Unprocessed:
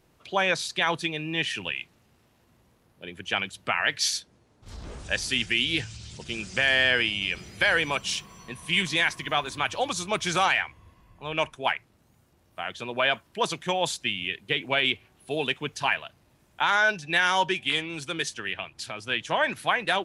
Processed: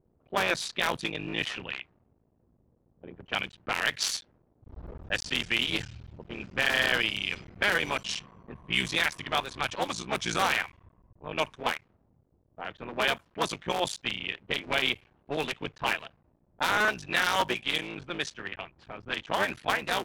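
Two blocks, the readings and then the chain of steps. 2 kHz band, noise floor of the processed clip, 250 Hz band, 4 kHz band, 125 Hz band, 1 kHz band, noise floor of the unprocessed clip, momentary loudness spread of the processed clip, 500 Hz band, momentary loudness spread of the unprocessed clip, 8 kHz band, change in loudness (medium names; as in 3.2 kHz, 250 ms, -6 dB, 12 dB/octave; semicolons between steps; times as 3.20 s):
-3.5 dB, -69 dBFS, -2.5 dB, -3.5 dB, -3.5 dB, -3.5 dB, -64 dBFS, 15 LU, -3.5 dB, 13 LU, -3.5 dB, -3.5 dB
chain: cycle switcher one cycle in 3, muted; level-controlled noise filter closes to 500 Hz, open at -24 dBFS; trim -1.5 dB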